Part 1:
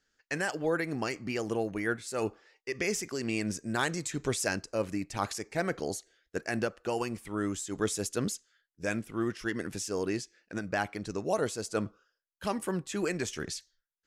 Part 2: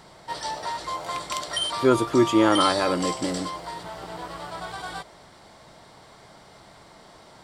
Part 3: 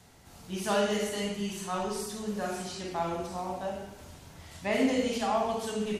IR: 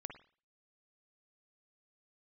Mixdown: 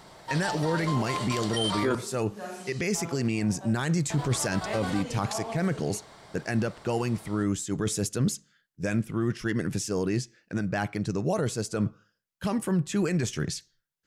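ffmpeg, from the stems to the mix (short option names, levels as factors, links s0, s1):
-filter_complex "[0:a]equalizer=f=140:t=o:w=1.1:g=13,volume=1.33,asplit=3[s0][s1][s2];[s1]volume=0.133[s3];[1:a]volume=0.708,asplit=3[s4][s5][s6];[s4]atrim=end=1.95,asetpts=PTS-STARTPTS,afade=t=out:st=1.946:d=0.004:c=hsin[s7];[s5]atrim=start=1.95:end=4.1,asetpts=PTS-STARTPTS,volume=0[s8];[s6]atrim=start=4.1,asetpts=PTS-STARTPTS,afade=t=in:d=0.004:c=hsin[s9];[s7][s8][s9]concat=n=3:v=0:a=1,asplit=2[s10][s11];[s11]volume=0.501[s12];[2:a]highpass=170,volume=0.531,asplit=2[s13][s14];[s14]volume=0.299[s15];[s2]apad=whole_len=264335[s16];[s13][s16]sidechaincompress=threshold=0.02:ratio=8:attack=37:release=166[s17];[3:a]atrim=start_sample=2205[s18];[s3][s12][s15]amix=inputs=3:normalize=0[s19];[s19][s18]afir=irnorm=-1:irlink=0[s20];[s0][s10][s17][s20]amix=inputs=4:normalize=0,alimiter=limit=0.133:level=0:latency=1:release=19"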